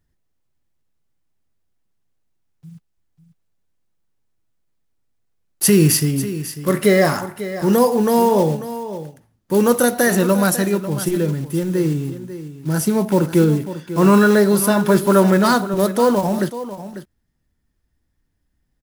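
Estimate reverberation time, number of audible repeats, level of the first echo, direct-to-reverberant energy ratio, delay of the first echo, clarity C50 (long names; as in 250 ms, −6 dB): no reverb audible, 1, −13.0 dB, no reverb audible, 545 ms, no reverb audible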